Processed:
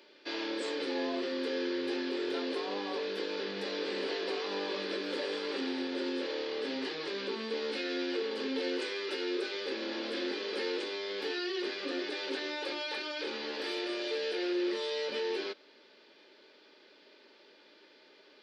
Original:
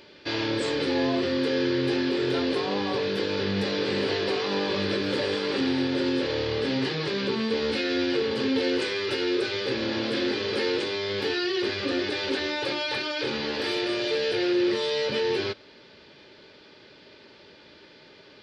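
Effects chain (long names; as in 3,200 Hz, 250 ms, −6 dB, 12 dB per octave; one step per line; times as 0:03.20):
high-pass filter 260 Hz 24 dB per octave
level −8 dB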